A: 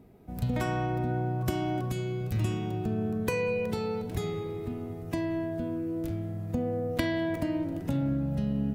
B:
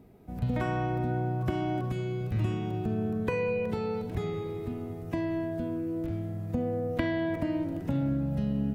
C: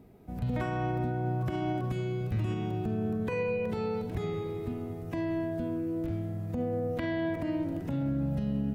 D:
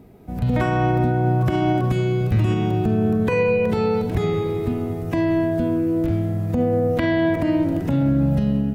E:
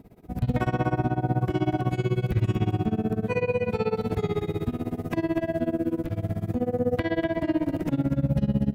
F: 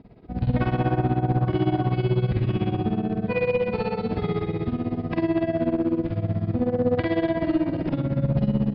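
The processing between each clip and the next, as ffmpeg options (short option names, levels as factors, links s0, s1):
-filter_complex "[0:a]acrossover=split=3000[s0][s1];[s1]acompressor=threshold=0.00141:ratio=4:attack=1:release=60[s2];[s0][s2]amix=inputs=2:normalize=0"
-af "alimiter=limit=0.0708:level=0:latency=1:release=60"
-af "dynaudnorm=f=170:g=5:m=1.58,volume=2.51"
-af "alimiter=limit=0.188:level=0:latency=1:release=172,tremolo=f=16:d=0.94,aecho=1:1:245:0.398"
-filter_complex "[0:a]aeval=exprs='clip(val(0),-1,0.1)':c=same,aresample=11025,aresample=44100,asplit=2[s0][s1];[s1]adelay=49,volume=0.75[s2];[s0][s2]amix=inputs=2:normalize=0"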